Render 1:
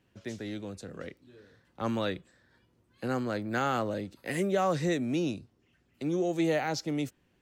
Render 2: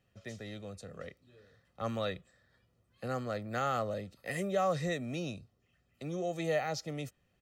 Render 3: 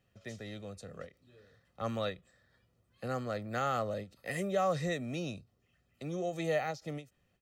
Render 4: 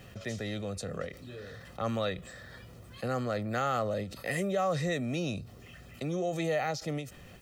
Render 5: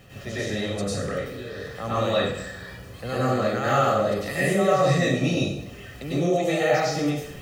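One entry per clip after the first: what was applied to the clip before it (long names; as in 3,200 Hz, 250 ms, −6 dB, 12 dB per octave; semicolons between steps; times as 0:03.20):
comb filter 1.6 ms, depth 58%; level −5 dB
every ending faded ahead of time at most 240 dB per second
envelope flattener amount 50%
dense smooth reverb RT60 0.79 s, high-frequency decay 0.85×, pre-delay 85 ms, DRR −9.5 dB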